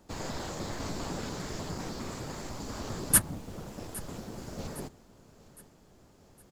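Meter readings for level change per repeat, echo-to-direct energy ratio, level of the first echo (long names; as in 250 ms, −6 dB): −6.5 dB, −19.0 dB, −20.0 dB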